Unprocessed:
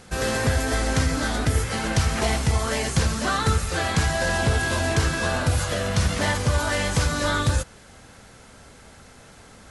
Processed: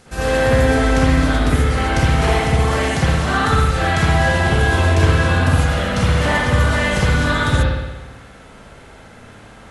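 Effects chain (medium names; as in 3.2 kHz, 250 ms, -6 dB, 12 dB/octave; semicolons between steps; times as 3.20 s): spring tank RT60 1.1 s, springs 57 ms, chirp 50 ms, DRR -8.5 dB; trim -2 dB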